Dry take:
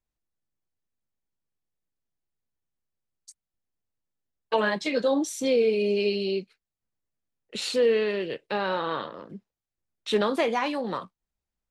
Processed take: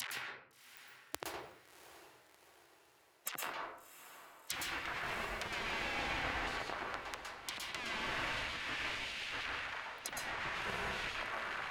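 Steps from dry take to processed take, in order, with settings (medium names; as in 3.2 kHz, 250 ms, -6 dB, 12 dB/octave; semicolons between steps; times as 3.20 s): jump at every zero crossing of -27.5 dBFS; frequency weighting D; low-pass that closes with the level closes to 970 Hz, closed at -17 dBFS; Schmitt trigger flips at -27.5 dBFS; low-pass that closes with the level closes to 900 Hz, closed at -25.5 dBFS; treble shelf 5.7 kHz +9 dB; upward compressor, threshold -36 dBFS; spectral gate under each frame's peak -25 dB weak; echo that smears into a reverb 690 ms, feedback 55%, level -13 dB; reverberation RT60 0.65 s, pre-delay 110 ms, DRR -1.5 dB; trim +3.5 dB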